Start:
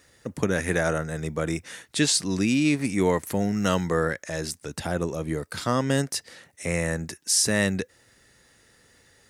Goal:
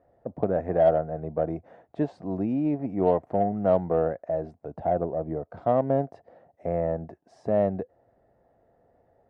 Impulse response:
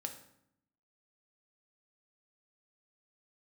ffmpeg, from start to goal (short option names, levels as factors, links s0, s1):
-af "lowpass=f=690:t=q:w=6.6,aeval=exprs='0.596*(cos(1*acos(clip(val(0)/0.596,-1,1)))-cos(1*PI/2))+0.00944*(cos(7*acos(clip(val(0)/0.596,-1,1)))-cos(7*PI/2))':c=same,volume=0.596"